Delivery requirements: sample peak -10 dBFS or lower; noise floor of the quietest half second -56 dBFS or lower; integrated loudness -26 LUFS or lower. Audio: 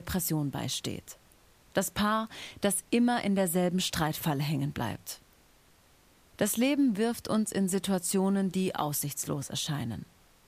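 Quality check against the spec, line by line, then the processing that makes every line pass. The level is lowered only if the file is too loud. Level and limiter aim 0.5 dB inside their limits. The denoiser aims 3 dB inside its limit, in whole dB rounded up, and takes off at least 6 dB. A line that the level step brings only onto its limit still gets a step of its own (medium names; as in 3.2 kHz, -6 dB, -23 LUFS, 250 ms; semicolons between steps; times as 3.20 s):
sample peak -14.5 dBFS: pass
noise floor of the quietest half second -62 dBFS: pass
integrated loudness -30.0 LUFS: pass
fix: none needed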